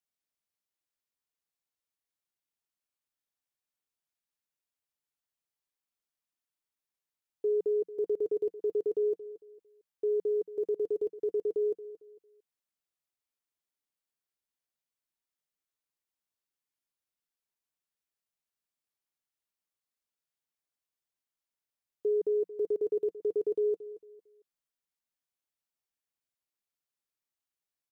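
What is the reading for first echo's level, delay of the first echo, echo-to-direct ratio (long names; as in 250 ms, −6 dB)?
−15.0 dB, 226 ms, −14.5 dB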